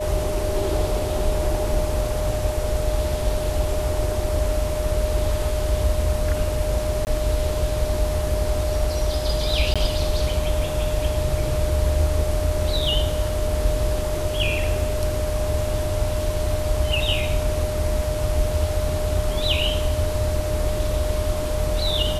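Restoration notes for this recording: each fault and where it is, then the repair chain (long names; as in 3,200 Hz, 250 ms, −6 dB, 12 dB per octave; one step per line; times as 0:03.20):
whistle 610 Hz −26 dBFS
0:07.05–0:07.07: drop-out 19 ms
0:09.74–0:09.76: drop-out 16 ms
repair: notch filter 610 Hz, Q 30
repair the gap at 0:07.05, 19 ms
repair the gap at 0:09.74, 16 ms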